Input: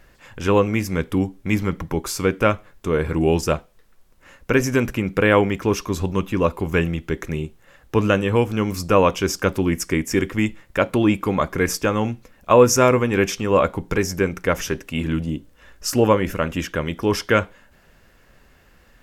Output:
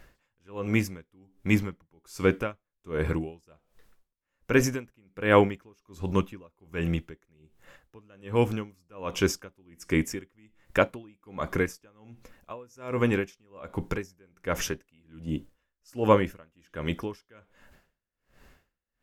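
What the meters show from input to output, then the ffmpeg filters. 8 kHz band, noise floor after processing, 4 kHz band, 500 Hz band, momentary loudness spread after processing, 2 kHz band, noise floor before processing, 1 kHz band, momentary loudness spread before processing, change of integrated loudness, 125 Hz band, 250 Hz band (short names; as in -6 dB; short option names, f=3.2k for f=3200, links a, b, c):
-12.0 dB, -83 dBFS, -10.0 dB, -10.0 dB, 20 LU, -8.0 dB, -54 dBFS, -10.0 dB, 9 LU, -8.0 dB, -9.0 dB, -9.0 dB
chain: -af "aeval=exprs='val(0)*pow(10,-37*(0.5-0.5*cos(2*PI*1.3*n/s))/20)':c=same,volume=-2dB"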